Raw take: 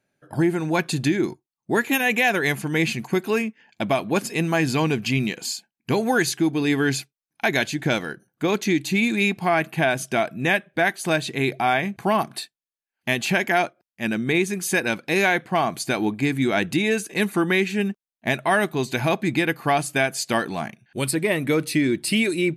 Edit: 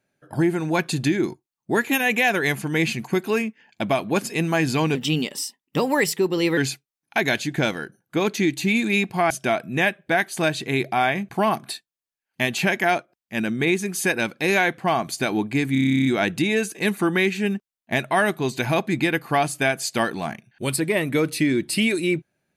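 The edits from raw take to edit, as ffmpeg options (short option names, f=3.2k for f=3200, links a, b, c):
-filter_complex "[0:a]asplit=15[a][b][c][d][e][f][g][h][i][j][k][l][m][n][o];[a]atrim=end=4.954[p];[b]atrim=start=4.95:end=6.85,asetpts=PTS-STARTPTS,asetrate=51597,aresample=44100,atrim=end_sample=71615,asetpts=PTS-STARTPTS[q];[c]atrim=start=6.846:end=9.582[r];[d]atrim=start=9.978:end=16.432[s];[e]atrim=start=16.398:end=16.432[t];[f]atrim=start=16.398:end=16.432[u];[g]atrim=start=16.398:end=16.432[v];[h]atrim=start=16.398:end=16.432[w];[i]atrim=start=16.398:end=16.432[x];[j]atrim=start=16.398:end=16.432[y];[k]atrim=start=16.398:end=16.432[z];[l]atrim=start=16.398:end=16.432[aa];[m]atrim=start=16.398:end=16.432[ab];[n]atrim=start=16.398:end=16.432[ac];[o]atrim=start=16.398[ad];[p][q]acrossfade=d=0.004:c1=hsin:c2=hsin[ae];[ae][r]acrossfade=d=0.004:c1=hsin:c2=hsin[af];[af][s]acrossfade=d=0.004:c1=hsin:c2=hsin[ag];[ag][t]acrossfade=d=0.004:c1=hsin:c2=hsin[ah];[ah][u]acrossfade=d=0.004:c1=hsin:c2=hsin[ai];[ai][v]acrossfade=d=0.004:c1=hsin:c2=hsin[aj];[aj][w]acrossfade=d=0.004:c1=hsin:c2=hsin[ak];[ak][x]acrossfade=d=0.004:c1=hsin:c2=hsin[al];[al][y]acrossfade=d=0.004:c1=hsin:c2=hsin[am];[am][z]acrossfade=d=0.004:c1=hsin:c2=hsin[an];[an][aa]acrossfade=d=0.004:c1=hsin:c2=hsin[ao];[ao][ab]acrossfade=d=0.004:c1=hsin:c2=hsin[ap];[ap][ac]acrossfade=d=0.004:c1=hsin:c2=hsin[aq];[aq][ad]acrossfade=d=0.004:c1=hsin:c2=hsin"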